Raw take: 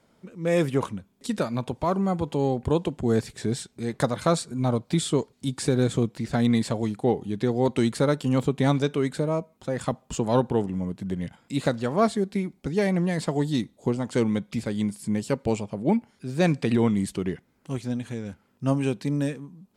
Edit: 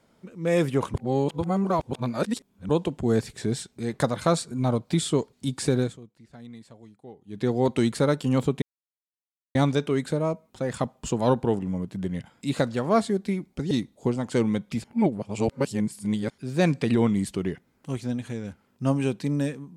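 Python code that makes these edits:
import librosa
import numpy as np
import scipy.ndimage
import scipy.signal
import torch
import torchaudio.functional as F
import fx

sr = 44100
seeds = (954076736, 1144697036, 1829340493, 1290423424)

y = fx.edit(x, sr, fx.reverse_span(start_s=0.94, length_s=1.75),
    fx.fade_down_up(start_s=5.76, length_s=1.71, db=-22.0, fade_s=0.21),
    fx.insert_silence(at_s=8.62, length_s=0.93),
    fx.cut(start_s=12.78, length_s=0.74),
    fx.reverse_span(start_s=14.65, length_s=1.46), tone=tone)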